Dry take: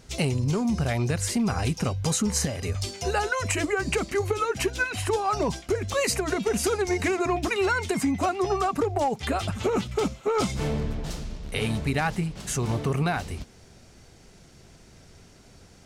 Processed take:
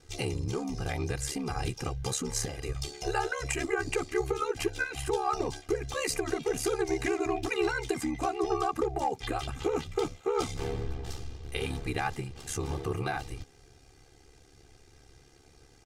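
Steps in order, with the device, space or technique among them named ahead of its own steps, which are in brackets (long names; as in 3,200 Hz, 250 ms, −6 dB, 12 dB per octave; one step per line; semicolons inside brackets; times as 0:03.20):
ring-modulated robot voice (ring modulation 35 Hz; comb filter 2.5 ms, depth 65%)
level −4.5 dB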